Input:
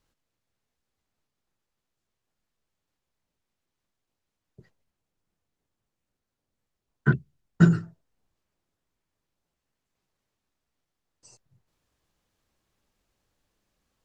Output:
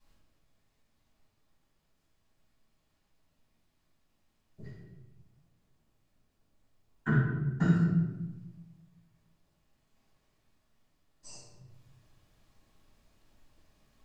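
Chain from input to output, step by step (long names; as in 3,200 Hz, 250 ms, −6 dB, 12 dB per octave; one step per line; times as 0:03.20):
downward compressor 3 to 1, threshold −34 dBFS, peak gain reduction 17 dB
rectangular room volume 500 cubic metres, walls mixed, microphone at 8.6 metres
level −8.5 dB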